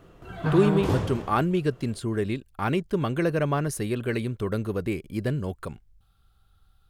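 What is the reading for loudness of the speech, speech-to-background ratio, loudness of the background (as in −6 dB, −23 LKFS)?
−27.0 LKFS, 1.0 dB, −28.0 LKFS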